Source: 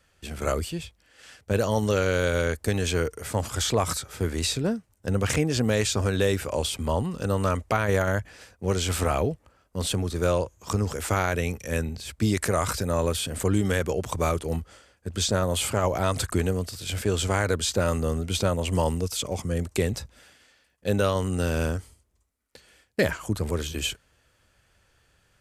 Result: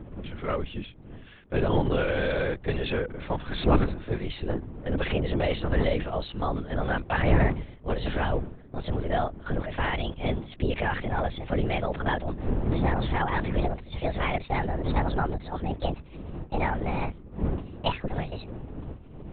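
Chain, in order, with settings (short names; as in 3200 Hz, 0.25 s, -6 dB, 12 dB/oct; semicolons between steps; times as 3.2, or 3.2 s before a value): speed glide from 95% -> 168%; wind noise 220 Hz -30 dBFS; LPC vocoder at 8 kHz whisper; gain -2.5 dB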